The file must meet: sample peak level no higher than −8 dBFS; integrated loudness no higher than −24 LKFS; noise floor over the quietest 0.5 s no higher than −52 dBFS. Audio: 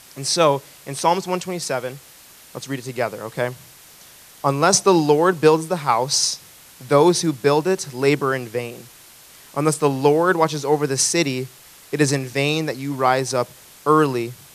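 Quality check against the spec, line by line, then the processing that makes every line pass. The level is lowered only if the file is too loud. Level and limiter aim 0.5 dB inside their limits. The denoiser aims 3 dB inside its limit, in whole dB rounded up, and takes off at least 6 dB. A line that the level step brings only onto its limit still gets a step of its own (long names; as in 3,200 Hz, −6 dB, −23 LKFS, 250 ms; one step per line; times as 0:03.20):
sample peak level −2.5 dBFS: out of spec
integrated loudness −19.5 LKFS: out of spec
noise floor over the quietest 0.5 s −46 dBFS: out of spec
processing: broadband denoise 6 dB, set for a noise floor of −46 dBFS
level −5 dB
brickwall limiter −8.5 dBFS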